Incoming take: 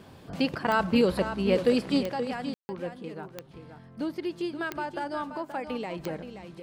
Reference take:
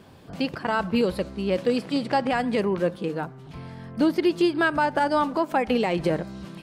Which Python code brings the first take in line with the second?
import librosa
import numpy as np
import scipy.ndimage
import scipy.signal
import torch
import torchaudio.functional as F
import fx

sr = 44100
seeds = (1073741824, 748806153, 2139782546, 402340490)

y = fx.fix_declick_ar(x, sr, threshold=10.0)
y = fx.fix_ambience(y, sr, seeds[0], print_start_s=3.42, print_end_s=3.92, start_s=2.54, end_s=2.69)
y = fx.fix_echo_inverse(y, sr, delay_ms=527, level_db=-10.0)
y = fx.fix_level(y, sr, at_s=2.03, step_db=11.0)